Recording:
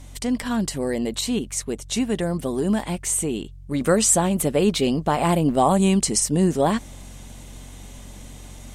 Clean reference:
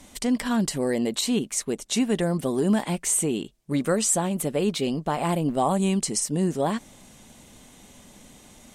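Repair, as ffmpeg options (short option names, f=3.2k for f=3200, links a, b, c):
-af "bandreject=f=45.8:t=h:w=4,bandreject=f=91.6:t=h:w=4,bandreject=f=137.4:t=h:w=4,asetnsamples=n=441:p=0,asendcmd='3.81 volume volume -5dB',volume=0dB"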